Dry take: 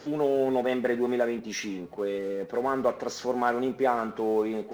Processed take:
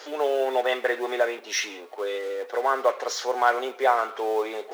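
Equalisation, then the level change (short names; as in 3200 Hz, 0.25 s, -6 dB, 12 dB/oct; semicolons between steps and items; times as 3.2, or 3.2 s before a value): Bessel high-pass 660 Hz, order 6; bell 3400 Hz +3 dB 0.31 oct; +7.5 dB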